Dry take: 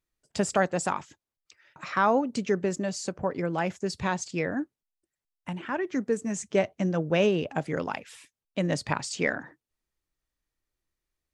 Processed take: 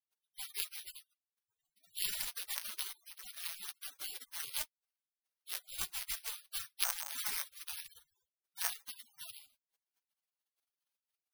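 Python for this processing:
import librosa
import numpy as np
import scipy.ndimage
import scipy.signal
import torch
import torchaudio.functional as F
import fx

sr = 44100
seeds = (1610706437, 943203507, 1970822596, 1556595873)

y = fx.cycle_switch(x, sr, every=3, mode='inverted')
y = (np.kron(y[::6], np.eye(6)[0]) * 6)[:len(y)]
y = fx.spec_gate(y, sr, threshold_db=-30, keep='weak')
y = y * 10.0 ** (11.0 / 20.0)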